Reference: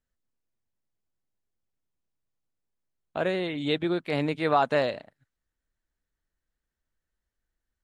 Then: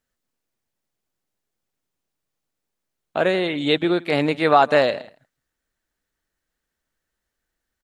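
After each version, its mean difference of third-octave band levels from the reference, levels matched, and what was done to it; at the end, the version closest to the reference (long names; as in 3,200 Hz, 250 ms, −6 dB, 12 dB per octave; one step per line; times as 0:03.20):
1.5 dB: low-shelf EQ 130 Hz −11 dB
notch filter 1,000 Hz, Q 30
on a send: single-tap delay 164 ms −22 dB
on the sum: level +8.5 dB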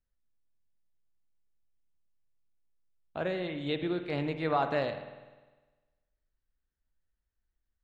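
3.5 dB: low-pass filter 5,800 Hz 12 dB per octave
low-shelf EQ 98 Hz +10 dB
spring reverb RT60 1.3 s, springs 50 ms, chirp 60 ms, DRR 8 dB
level −6.5 dB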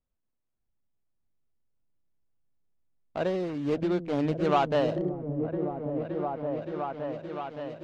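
5.0 dB: running median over 25 samples
low-pass filter 5,200 Hz 12 dB per octave
on a send: echo whose low-pass opens from repeat to repeat 569 ms, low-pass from 200 Hz, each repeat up 1 octave, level 0 dB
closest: first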